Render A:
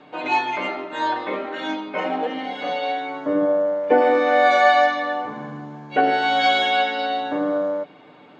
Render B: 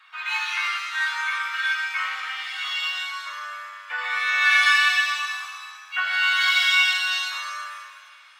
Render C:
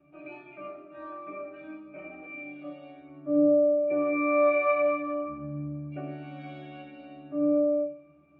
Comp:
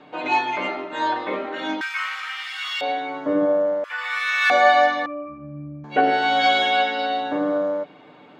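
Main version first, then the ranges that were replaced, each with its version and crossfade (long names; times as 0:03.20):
A
0:01.81–0:02.81: punch in from B
0:03.84–0:04.50: punch in from B
0:05.06–0:05.84: punch in from C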